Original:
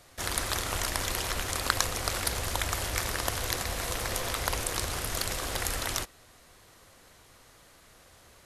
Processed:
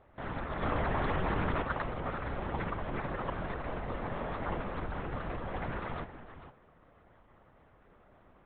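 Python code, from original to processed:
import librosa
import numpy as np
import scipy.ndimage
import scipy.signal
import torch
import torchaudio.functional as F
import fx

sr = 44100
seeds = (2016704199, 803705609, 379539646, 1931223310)

y = scipy.signal.sosfilt(scipy.signal.butter(2, 1300.0, 'lowpass', fs=sr, output='sos'), x)
y = y + 10.0 ** (-12.0 / 20.0) * np.pad(y, (int(456 * sr / 1000.0), 0))[:len(y)]
y = fx.lpc_vocoder(y, sr, seeds[0], excitation='whisper', order=10)
y = fx.env_flatten(y, sr, amount_pct=100, at=(0.61, 1.61), fade=0.02)
y = y * librosa.db_to_amplitude(-2.0)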